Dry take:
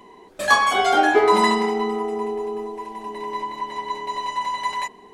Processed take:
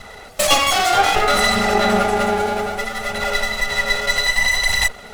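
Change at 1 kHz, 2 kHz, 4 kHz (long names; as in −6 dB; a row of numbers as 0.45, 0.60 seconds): +1.5, +6.5, +10.0 decibels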